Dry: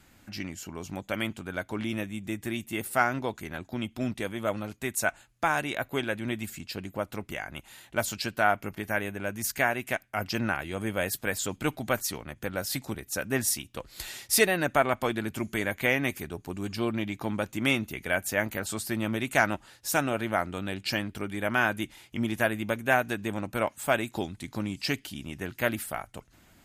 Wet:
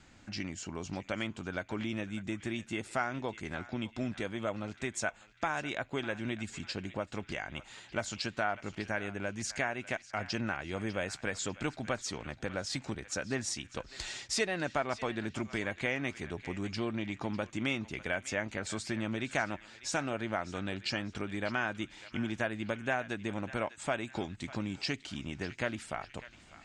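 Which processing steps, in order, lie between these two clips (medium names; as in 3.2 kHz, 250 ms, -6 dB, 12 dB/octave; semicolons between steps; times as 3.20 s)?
steep low-pass 7.7 kHz 36 dB/octave; compression 2:1, threshold -35 dBFS, peak gain reduction 10.5 dB; band-passed feedback delay 599 ms, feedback 49%, band-pass 2.5 kHz, level -13 dB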